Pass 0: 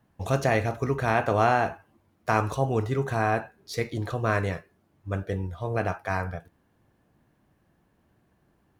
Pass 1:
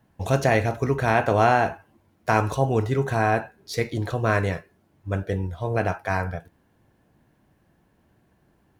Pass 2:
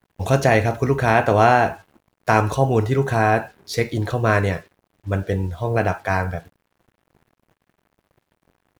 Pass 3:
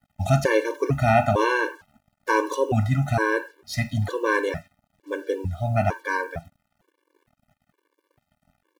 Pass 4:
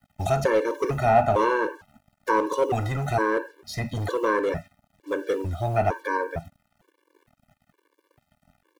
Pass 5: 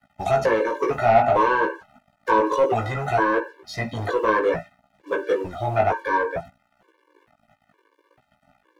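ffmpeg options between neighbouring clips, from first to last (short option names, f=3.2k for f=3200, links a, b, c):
-af "bandreject=f=1.2k:w=13,volume=3.5dB"
-af "acrusher=bits=8:mix=0:aa=0.5,volume=4dB"
-af "afftfilt=real='re*gt(sin(2*PI*1.1*pts/sr)*(1-2*mod(floor(b*sr/1024/300),2)),0)':imag='im*gt(sin(2*PI*1.1*pts/sr)*(1-2*mod(floor(b*sr/1024/300),2)),0)':win_size=1024:overlap=0.75"
-filter_complex "[0:a]acrossover=split=520|1100[a][b][c];[a]volume=30dB,asoftclip=hard,volume=-30dB[d];[c]acompressor=threshold=-40dB:ratio=4[e];[d][b][e]amix=inputs=3:normalize=0,volume=3.5dB"
-filter_complex "[0:a]asplit=2[a][b];[b]highpass=f=720:p=1,volume=14dB,asoftclip=type=tanh:threshold=-7.5dB[c];[a][c]amix=inputs=2:normalize=0,lowpass=f=1.7k:p=1,volume=-6dB,flanger=delay=15:depth=3.5:speed=0.59,volume=3dB"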